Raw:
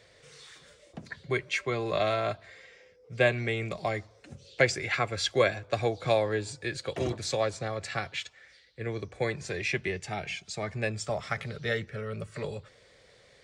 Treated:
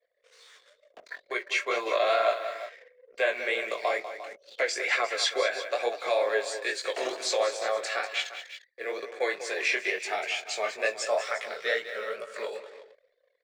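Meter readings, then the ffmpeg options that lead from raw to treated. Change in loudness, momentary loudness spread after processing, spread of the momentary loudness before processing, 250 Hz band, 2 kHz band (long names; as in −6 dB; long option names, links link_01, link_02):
+1.5 dB, 12 LU, 18 LU, −9.0 dB, +3.0 dB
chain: -filter_complex "[0:a]acrusher=bits=10:mix=0:aa=0.000001,alimiter=limit=-20dB:level=0:latency=1:release=152,flanger=delay=16.5:depth=7.8:speed=2.2,highpass=frequency=470:width=0.5412,highpass=frequency=470:width=1.3066,highshelf=frequency=3800:gain=-2.5,asplit=2[link_01][link_02];[link_02]aecho=0:1:46|195|351:0.106|0.266|0.2[link_03];[link_01][link_03]amix=inputs=2:normalize=0,anlmdn=0.000158,dynaudnorm=framelen=140:gausssize=17:maxgain=9dB,bandreject=frequency=800:width=16"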